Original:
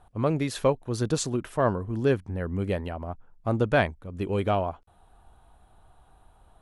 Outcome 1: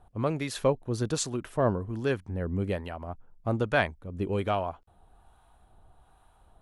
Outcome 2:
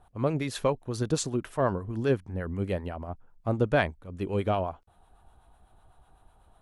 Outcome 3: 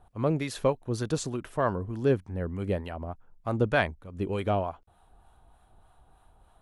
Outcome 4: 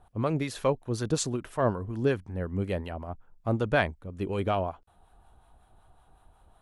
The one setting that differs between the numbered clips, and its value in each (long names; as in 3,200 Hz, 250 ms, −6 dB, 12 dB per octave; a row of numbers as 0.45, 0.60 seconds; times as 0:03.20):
two-band tremolo in antiphase, speed: 1.2, 8, 3.3, 5.4 Hertz